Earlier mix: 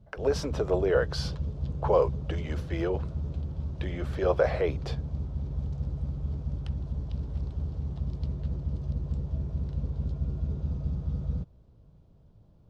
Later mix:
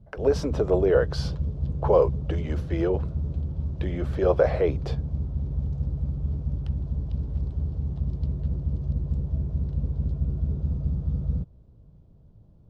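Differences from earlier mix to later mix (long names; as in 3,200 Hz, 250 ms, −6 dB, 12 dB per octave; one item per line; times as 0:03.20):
speech +3.0 dB
master: add tilt shelving filter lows +4.5 dB, about 640 Hz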